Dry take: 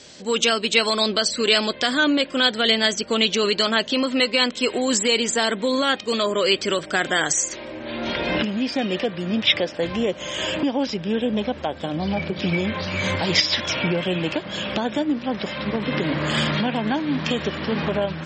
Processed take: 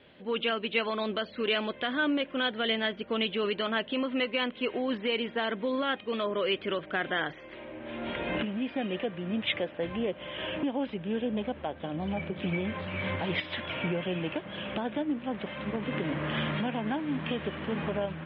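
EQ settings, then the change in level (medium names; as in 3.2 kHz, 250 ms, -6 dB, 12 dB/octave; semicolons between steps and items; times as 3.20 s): steep low-pass 3.4 kHz 48 dB/octave; distance through air 110 m; -8.0 dB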